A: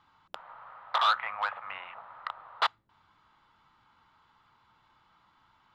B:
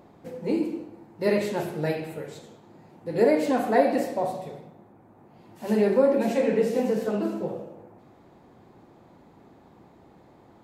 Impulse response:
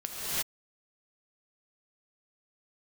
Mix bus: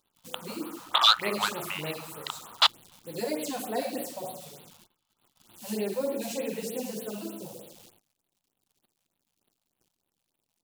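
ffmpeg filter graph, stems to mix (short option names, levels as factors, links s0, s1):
-filter_complex "[0:a]volume=1.12[s0];[1:a]acrusher=bits=9:dc=4:mix=0:aa=0.000001,volume=0.335[s1];[s0][s1]amix=inputs=2:normalize=0,agate=range=0.0794:threshold=0.00141:ratio=16:detection=peak,aexciter=amount=5:drive=4.4:freq=2700,afftfilt=real='re*(1-between(b*sr/1024,300*pow(6700/300,0.5+0.5*sin(2*PI*3.3*pts/sr))/1.41,300*pow(6700/300,0.5+0.5*sin(2*PI*3.3*pts/sr))*1.41))':imag='im*(1-between(b*sr/1024,300*pow(6700/300,0.5+0.5*sin(2*PI*3.3*pts/sr))/1.41,300*pow(6700/300,0.5+0.5*sin(2*PI*3.3*pts/sr))*1.41))':win_size=1024:overlap=0.75"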